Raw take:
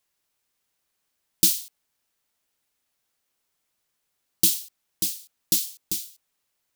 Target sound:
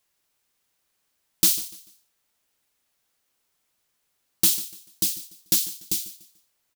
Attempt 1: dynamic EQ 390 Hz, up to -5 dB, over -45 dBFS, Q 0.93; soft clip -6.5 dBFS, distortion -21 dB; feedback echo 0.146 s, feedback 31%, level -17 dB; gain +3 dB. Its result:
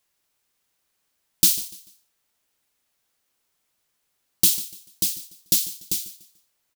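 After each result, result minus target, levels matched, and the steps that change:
soft clip: distortion -8 dB; 500 Hz band -2.5 dB
change: soft clip -13 dBFS, distortion -13 dB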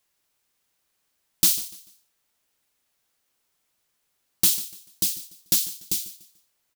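500 Hz band -2.5 dB
remove: dynamic EQ 390 Hz, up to -5 dB, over -45 dBFS, Q 0.93

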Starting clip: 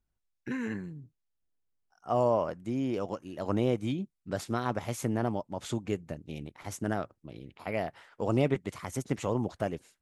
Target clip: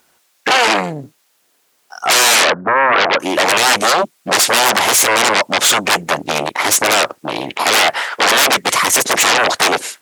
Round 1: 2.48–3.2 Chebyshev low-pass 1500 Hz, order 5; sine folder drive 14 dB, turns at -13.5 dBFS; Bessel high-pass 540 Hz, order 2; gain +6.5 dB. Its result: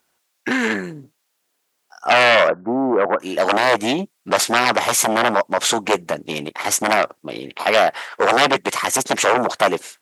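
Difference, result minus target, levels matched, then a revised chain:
sine folder: distortion -15 dB
2.48–3.2 Chebyshev low-pass 1500 Hz, order 5; sine folder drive 25 dB, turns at -13.5 dBFS; Bessel high-pass 540 Hz, order 2; gain +6.5 dB

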